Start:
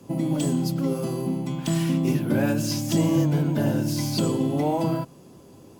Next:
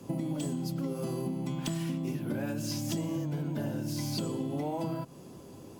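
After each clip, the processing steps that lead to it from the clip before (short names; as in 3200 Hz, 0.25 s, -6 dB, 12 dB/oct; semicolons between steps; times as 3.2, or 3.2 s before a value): compressor 10:1, threshold -30 dBFS, peak gain reduction 14 dB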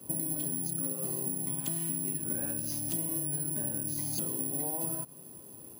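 careless resampling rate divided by 4×, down filtered, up zero stuff; gain -6.5 dB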